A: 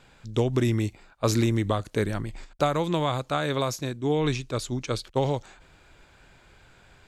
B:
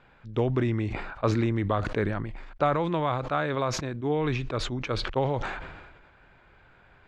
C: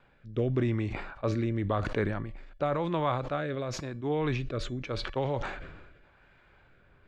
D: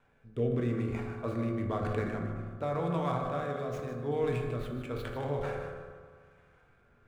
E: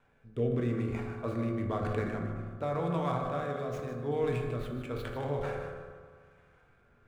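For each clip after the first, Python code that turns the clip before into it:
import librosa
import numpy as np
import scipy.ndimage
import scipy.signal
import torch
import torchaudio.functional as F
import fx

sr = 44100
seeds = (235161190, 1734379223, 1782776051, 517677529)

y1 = scipy.signal.sosfilt(scipy.signal.butter(2, 1800.0, 'lowpass', fs=sr, output='sos'), x)
y1 = fx.tilt_shelf(y1, sr, db=-3.5, hz=870.0)
y1 = fx.sustainer(y1, sr, db_per_s=42.0)
y2 = fx.rotary(y1, sr, hz=0.9)
y2 = fx.comb_fb(y2, sr, f0_hz=570.0, decay_s=0.35, harmonics='all', damping=0.0, mix_pct=60)
y2 = F.gain(torch.from_numpy(y2), 6.0).numpy()
y3 = scipy.signal.medfilt(y2, 9)
y3 = y3 + 10.0 ** (-10.0 / 20.0) * np.pad(y3, (int(153 * sr / 1000.0), 0))[:len(y3)]
y3 = fx.rev_fdn(y3, sr, rt60_s=1.7, lf_ratio=1.1, hf_ratio=0.35, size_ms=13.0, drr_db=1.0)
y3 = F.gain(torch.from_numpy(y3), -6.0).numpy()
y4 = fx.quant_float(y3, sr, bits=8)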